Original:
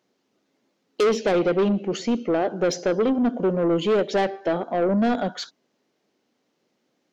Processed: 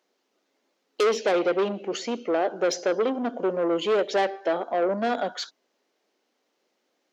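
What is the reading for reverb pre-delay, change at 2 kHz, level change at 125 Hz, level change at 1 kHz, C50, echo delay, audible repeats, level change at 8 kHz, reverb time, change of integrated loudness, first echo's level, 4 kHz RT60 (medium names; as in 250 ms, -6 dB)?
no reverb, 0.0 dB, -13.0 dB, -0.5 dB, no reverb, no echo, no echo, no reading, no reverb, -3.0 dB, no echo, no reverb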